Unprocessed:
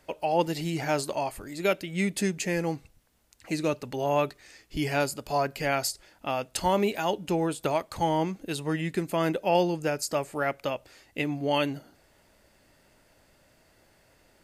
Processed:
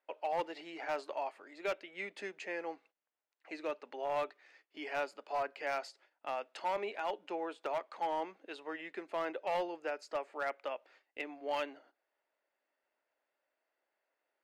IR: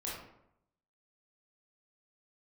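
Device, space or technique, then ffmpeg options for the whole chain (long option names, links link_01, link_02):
walkie-talkie: -af "highpass=frequency=230:width=0.5412,highpass=frequency=230:width=1.3066,highpass=530,lowpass=2500,asoftclip=type=hard:threshold=-22dB,agate=range=-13dB:threshold=-56dB:ratio=16:detection=peak,volume=-6.5dB"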